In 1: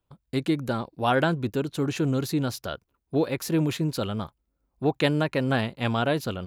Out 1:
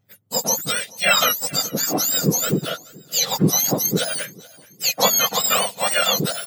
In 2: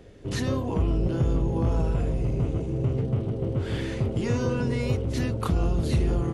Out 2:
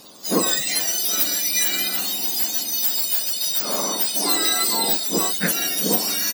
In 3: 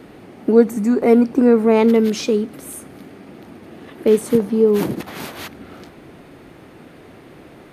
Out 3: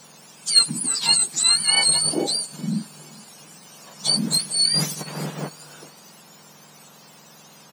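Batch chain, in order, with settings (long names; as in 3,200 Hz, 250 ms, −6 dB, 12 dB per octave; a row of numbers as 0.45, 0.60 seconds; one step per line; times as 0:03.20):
frequency axis turned over on the octave scale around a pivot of 1,400 Hz
repeating echo 430 ms, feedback 42%, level −23 dB
loudness normalisation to −19 LKFS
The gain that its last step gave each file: +10.5, +12.0, −0.5 decibels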